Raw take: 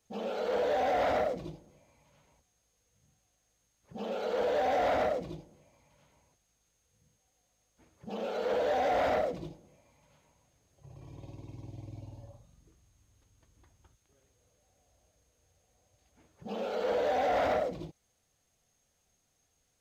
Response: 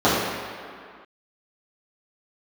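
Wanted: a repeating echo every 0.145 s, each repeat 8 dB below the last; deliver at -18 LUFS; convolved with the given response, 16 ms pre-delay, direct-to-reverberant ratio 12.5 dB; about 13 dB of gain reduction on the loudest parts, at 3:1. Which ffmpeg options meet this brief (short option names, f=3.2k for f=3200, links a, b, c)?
-filter_complex "[0:a]acompressor=threshold=-44dB:ratio=3,aecho=1:1:145|290|435|580|725:0.398|0.159|0.0637|0.0255|0.0102,asplit=2[a][b];[1:a]atrim=start_sample=2205,adelay=16[c];[b][c]afir=irnorm=-1:irlink=0,volume=-36.5dB[d];[a][d]amix=inputs=2:normalize=0,volume=25.5dB"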